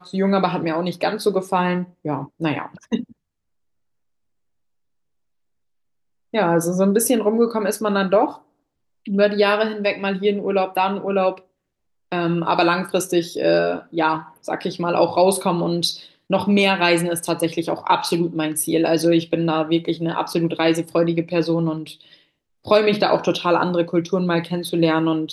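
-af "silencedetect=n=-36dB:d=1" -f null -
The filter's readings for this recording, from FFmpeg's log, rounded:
silence_start: 3.12
silence_end: 6.34 | silence_duration: 3.22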